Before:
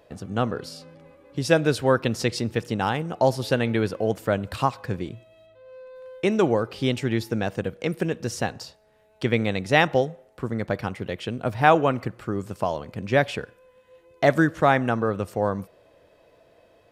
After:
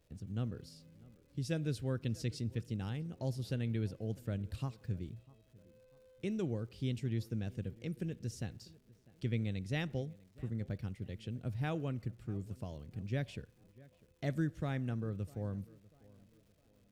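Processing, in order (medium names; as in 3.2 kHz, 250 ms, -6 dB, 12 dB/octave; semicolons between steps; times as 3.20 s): amplifier tone stack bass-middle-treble 10-0-1; crackle 330 per s -67 dBFS; on a send: tape echo 647 ms, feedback 46%, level -20 dB, low-pass 1.6 kHz; on the sum: trim +4.5 dB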